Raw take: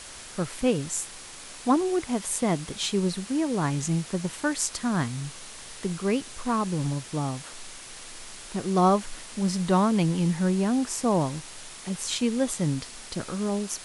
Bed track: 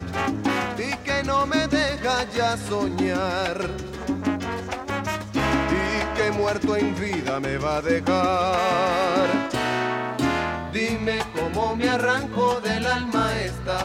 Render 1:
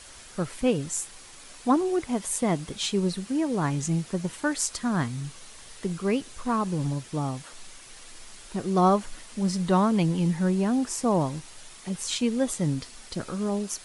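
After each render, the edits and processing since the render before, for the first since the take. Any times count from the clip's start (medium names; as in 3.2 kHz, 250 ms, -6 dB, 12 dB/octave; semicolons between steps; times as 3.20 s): noise reduction 6 dB, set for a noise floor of -43 dBFS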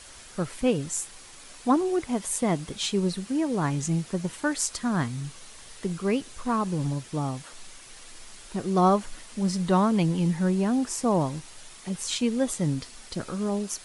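no audible change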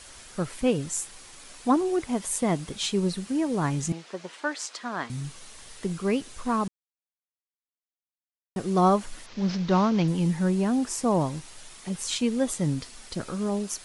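3.92–5.10 s: band-pass 440–4900 Hz; 6.68–8.56 s: mute; 9.26–10.08 s: CVSD coder 32 kbps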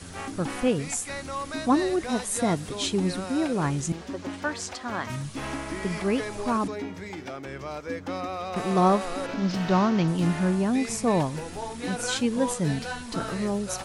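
add bed track -11.5 dB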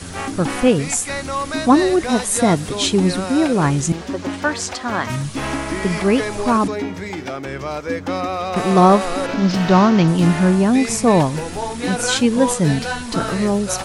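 trim +9.5 dB; peak limiter -2 dBFS, peak gain reduction 1.5 dB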